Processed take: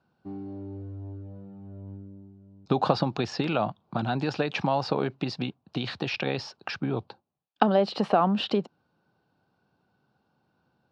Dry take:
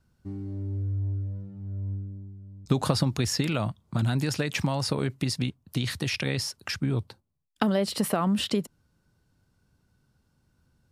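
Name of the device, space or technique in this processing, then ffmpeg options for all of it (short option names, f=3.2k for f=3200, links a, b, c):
kitchen radio: -af "highpass=220,equalizer=f=260:t=q:w=4:g=-3,equalizer=f=770:t=q:w=4:g=8,equalizer=f=2k:t=q:w=4:g=-10,equalizer=f=3.3k:t=q:w=4:g=-4,lowpass=f=3.9k:w=0.5412,lowpass=f=3.9k:w=1.3066,volume=3.5dB"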